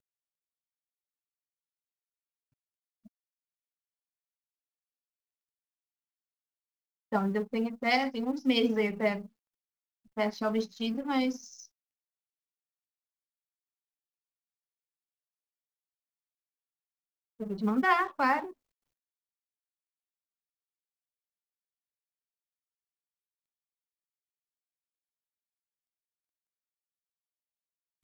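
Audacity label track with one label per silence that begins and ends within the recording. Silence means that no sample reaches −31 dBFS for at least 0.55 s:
9.170000	10.170000	silence
11.320000	17.410000	silence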